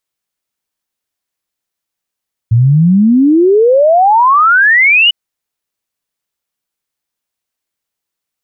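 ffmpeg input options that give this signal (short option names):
-f lavfi -i "aevalsrc='0.596*clip(min(t,2.6-t)/0.01,0,1)*sin(2*PI*110*2.6/log(3000/110)*(exp(log(3000/110)*t/2.6)-1))':d=2.6:s=44100"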